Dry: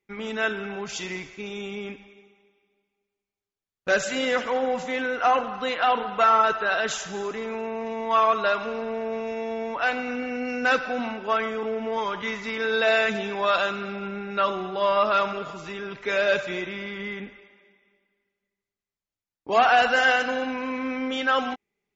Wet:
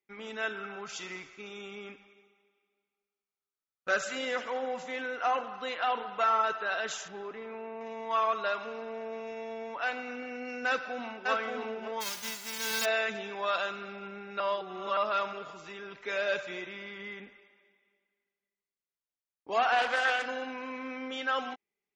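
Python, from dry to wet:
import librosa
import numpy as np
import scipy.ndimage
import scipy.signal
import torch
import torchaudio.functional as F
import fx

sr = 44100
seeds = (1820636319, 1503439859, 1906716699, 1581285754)

y = fx.peak_eq(x, sr, hz=1300.0, db=11.0, octaves=0.26, at=(0.55, 4.17))
y = fx.air_absorb(y, sr, metres=260.0, at=(7.08, 7.81))
y = fx.echo_throw(y, sr, start_s=10.67, length_s=0.62, ms=580, feedback_pct=10, wet_db=-2.0)
y = fx.envelope_flatten(y, sr, power=0.1, at=(12.0, 12.84), fade=0.02)
y = fx.doppler_dist(y, sr, depth_ms=0.22, at=(19.72, 20.26))
y = fx.edit(y, sr, fx.reverse_span(start_s=14.4, length_s=0.57), tone=tone)
y = fx.low_shelf(y, sr, hz=210.0, db=-10.5)
y = y * librosa.db_to_amplitude(-7.5)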